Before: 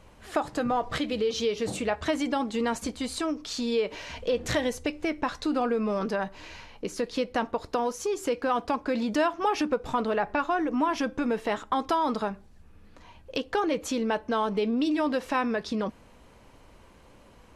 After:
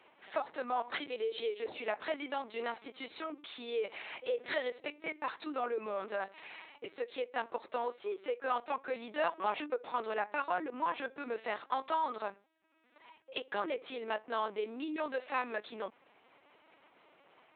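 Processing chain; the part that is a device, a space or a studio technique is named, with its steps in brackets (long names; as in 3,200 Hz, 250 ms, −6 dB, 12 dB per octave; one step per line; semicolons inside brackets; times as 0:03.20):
talking toy (linear-prediction vocoder at 8 kHz pitch kept; high-pass filter 430 Hz 12 dB per octave; parametric band 2,200 Hz +4 dB 0.51 octaves)
level −6 dB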